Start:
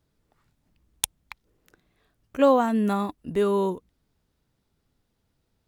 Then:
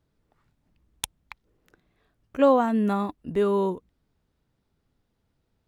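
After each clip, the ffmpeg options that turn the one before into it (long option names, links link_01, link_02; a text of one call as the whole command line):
ffmpeg -i in.wav -af "highshelf=frequency=4300:gain=-8" out.wav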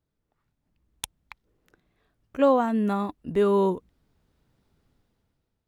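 ffmpeg -i in.wav -af "dynaudnorm=framelen=230:gausssize=7:maxgain=14.5dB,volume=-8.5dB" out.wav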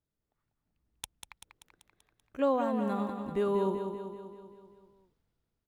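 ffmpeg -i in.wav -af "aecho=1:1:193|386|579|772|965|1158|1351:0.447|0.255|0.145|0.0827|0.0472|0.0269|0.0153,volume=-8dB" out.wav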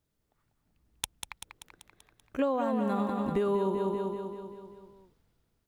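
ffmpeg -i in.wav -af "acompressor=threshold=-33dB:ratio=10,volume=8dB" out.wav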